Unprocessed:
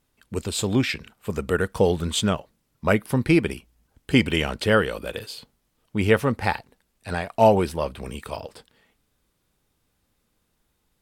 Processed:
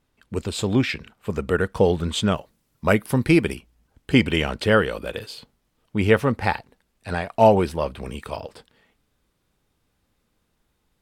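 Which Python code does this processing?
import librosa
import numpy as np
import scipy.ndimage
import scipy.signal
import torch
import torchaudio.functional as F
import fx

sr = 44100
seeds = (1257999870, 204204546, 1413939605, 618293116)

y = fx.high_shelf(x, sr, hz=6200.0, db=fx.steps((0.0, -10.0), (2.3, 2.0), (3.54, -6.5)))
y = y * 10.0 ** (1.5 / 20.0)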